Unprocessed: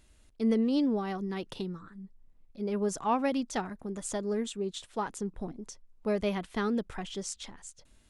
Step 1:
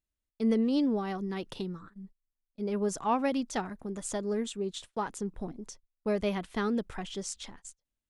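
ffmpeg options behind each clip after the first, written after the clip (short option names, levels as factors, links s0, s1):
-af "agate=range=0.0355:threshold=0.00398:ratio=16:detection=peak"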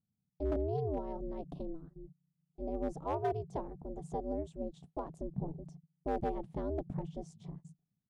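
-af "firequalizer=gain_entry='entry(140,0);entry(210,-12);entry(320,-14);entry(560,-4);entry(1300,-29)':delay=0.05:min_phase=1,volume=42.2,asoftclip=hard,volume=0.0237,aeval=exprs='val(0)*sin(2*PI*160*n/s)':c=same,volume=2.37"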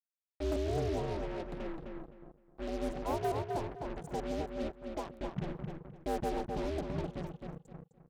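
-filter_complex "[0:a]acrusher=bits=6:mix=0:aa=0.5,asplit=2[s0][s1];[s1]adelay=258,lowpass=f=3000:p=1,volume=0.631,asplit=2[s2][s3];[s3]adelay=258,lowpass=f=3000:p=1,volume=0.27,asplit=2[s4][s5];[s5]adelay=258,lowpass=f=3000:p=1,volume=0.27,asplit=2[s6][s7];[s7]adelay=258,lowpass=f=3000:p=1,volume=0.27[s8];[s2][s4][s6][s8]amix=inputs=4:normalize=0[s9];[s0][s9]amix=inputs=2:normalize=0"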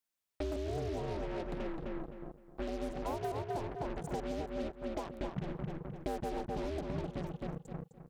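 -af "acompressor=threshold=0.00794:ratio=5,volume=2.24"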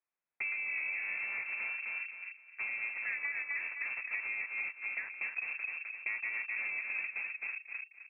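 -af "lowpass=f=2300:t=q:w=0.5098,lowpass=f=2300:t=q:w=0.6013,lowpass=f=2300:t=q:w=0.9,lowpass=f=2300:t=q:w=2.563,afreqshift=-2700"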